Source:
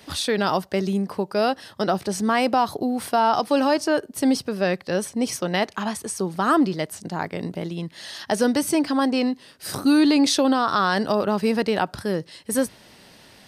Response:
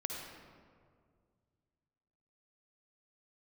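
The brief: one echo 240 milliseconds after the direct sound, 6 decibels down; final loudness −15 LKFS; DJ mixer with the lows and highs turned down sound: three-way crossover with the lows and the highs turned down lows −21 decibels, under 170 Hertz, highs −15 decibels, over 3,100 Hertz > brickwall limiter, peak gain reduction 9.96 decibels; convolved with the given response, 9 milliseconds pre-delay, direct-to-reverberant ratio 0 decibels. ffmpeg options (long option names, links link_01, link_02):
-filter_complex "[0:a]aecho=1:1:240:0.501,asplit=2[link_01][link_02];[1:a]atrim=start_sample=2205,adelay=9[link_03];[link_02][link_03]afir=irnorm=-1:irlink=0,volume=-1.5dB[link_04];[link_01][link_04]amix=inputs=2:normalize=0,acrossover=split=170 3100:gain=0.0891 1 0.178[link_05][link_06][link_07];[link_05][link_06][link_07]amix=inputs=3:normalize=0,volume=8.5dB,alimiter=limit=-5.5dB:level=0:latency=1"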